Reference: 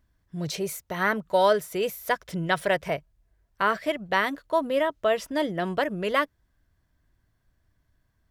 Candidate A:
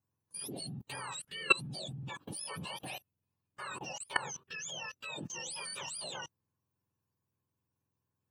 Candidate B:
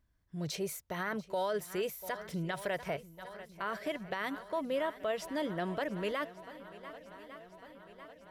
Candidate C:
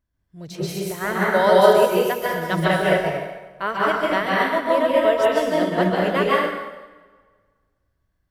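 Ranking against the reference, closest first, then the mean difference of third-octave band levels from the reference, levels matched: B, C, A; 5.0, 10.0, 13.5 decibels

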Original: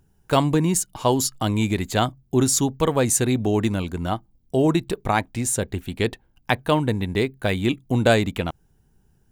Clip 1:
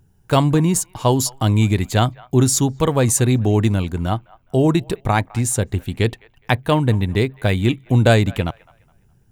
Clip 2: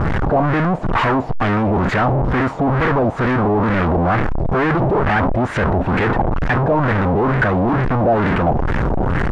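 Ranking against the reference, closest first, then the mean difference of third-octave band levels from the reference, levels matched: 1, 2; 2.5, 12.5 decibels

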